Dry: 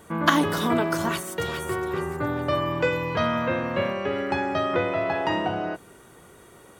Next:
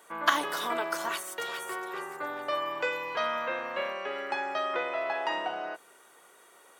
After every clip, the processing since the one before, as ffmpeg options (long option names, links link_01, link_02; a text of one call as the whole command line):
ffmpeg -i in.wav -af "highpass=630,volume=-3.5dB" out.wav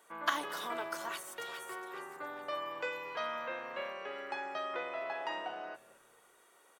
ffmpeg -i in.wav -filter_complex "[0:a]asplit=4[link_01][link_02][link_03][link_04];[link_02]adelay=224,afreqshift=-93,volume=-21.5dB[link_05];[link_03]adelay=448,afreqshift=-186,volume=-28.8dB[link_06];[link_04]adelay=672,afreqshift=-279,volume=-36.2dB[link_07];[link_01][link_05][link_06][link_07]amix=inputs=4:normalize=0,volume=-7.5dB" out.wav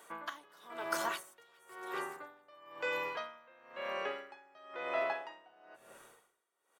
ffmpeg -i in.wav -af "aeval=exprs='val(0)*pow(10,-28*(0.5-0.5*cos(2*PI*1*n/s))/20)':channel_layout=same,volume=6.5dB" out.wav